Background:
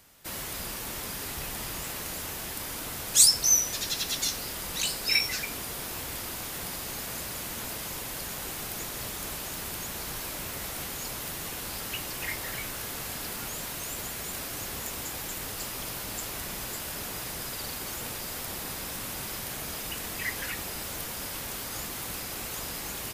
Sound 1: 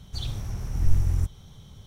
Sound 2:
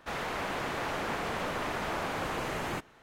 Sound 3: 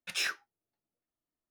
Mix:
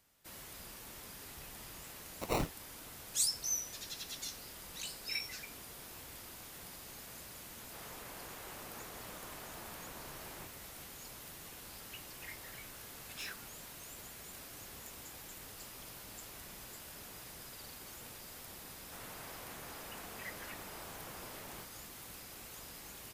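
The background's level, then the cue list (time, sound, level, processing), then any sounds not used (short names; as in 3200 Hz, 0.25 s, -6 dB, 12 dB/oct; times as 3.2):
background -14 dB
2.14 add 3 -1 dB + sample-and-hold 27×
7.67 add 2 -18 dB + record warp 45 rpm, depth 250 cents
13.02 add 3 -13 dB
18.85 add 2 -17.5 dB
not used: 1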